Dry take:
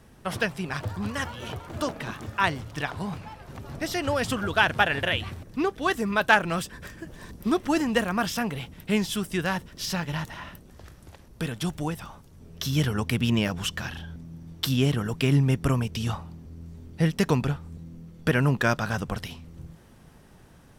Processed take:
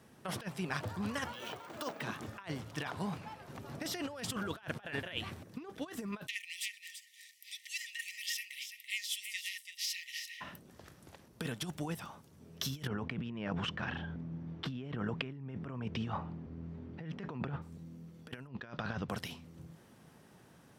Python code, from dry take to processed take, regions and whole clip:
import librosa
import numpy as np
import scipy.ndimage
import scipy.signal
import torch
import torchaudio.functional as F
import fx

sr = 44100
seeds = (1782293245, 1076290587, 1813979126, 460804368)

y = fx.chain(x, sr, fx.highpass(hz=420.0, slope=6),
    fx.resample_bad(factor=2, down='filtered', up='hold'), at=(1.33, 2.02))
y = fx.chain(y, sr, fx.brickwall_highpass(low_hz=1800.0),
    fx.echo_single(ms=335, db=-9.0), at=(6.27, 10.41))
y = fx.chain(y, sr, fx.lowpass(hz=2200.0, slope=12),
    fx.over_compress(threshold_db=-32.0, ratio=-1.0), at=(12.87, 17.62))
y = fx.chain(y, sr, fx.lowpass(hz=4700.0, slope=24),
    fx.peak_eq(hz=70.0, db=9.5, octaves=0.79), at=(18.47, 19.09))
y = scipy.signal.sosfilt(scipy.signal.butter(2, 130.0, 'highpass', fs=sr, output='sos'), y)
y = fx.over_compress(y, sr, threshold_db=-30.0, ratio=-0.5)
y = F.gain(torch.from_numpy(y), -7.5).numpy()